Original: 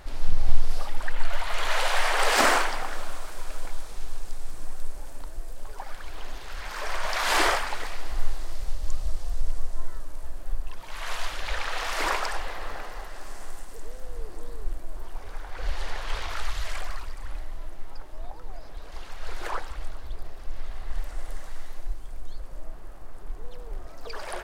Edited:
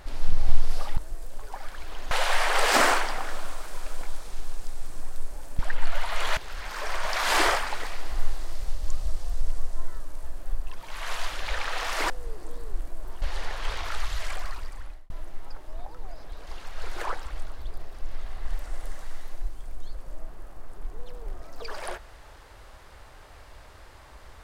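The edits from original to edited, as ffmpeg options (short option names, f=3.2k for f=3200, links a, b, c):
-filter_complex "[0:a]asplit=8[a][b][c][d][e][f][g][h];[a]atrim=end=0.972[i];[b]atrim=start=5.228:end=6.372[j];[c]atrim=start=1.748:end=5.232[k];[d]atrim=start=0.968:end=1.752[l];[e]atrim=start=6.368:end=12.102[m];[f]atrim=start=14.018:end=15.142[n];[g]atrim=start=15.668:end=17.55,asetpts=PTS-STARTPTS,afade=t=out:st=1.472:d=0.41[o];[h]atrim=start=17.55,asetpts=PTS-STARTPTS,afade=t=in:d=0.004:c=hsin[p];[i][j]acrossfade=d=0.004:c1=hsin:c2=hsin[q];[q][k]acrossfade=d=0.004:c1=hsin:c2=hsin[r];[r][l]acrossfade=d=0.004:c1=hsin:c2=hsin[s];[s][m]acrossfade=d=0.004:c1=hsin:c2=hsin[t];[t][n]acrossfade=d=0.004:c1=hsin:c2=hsin[u];[o][p]concat=n=2:v=0:a=1[v];[u][v]acrossfade=d=0.004:c1=hsin:c2=hsin"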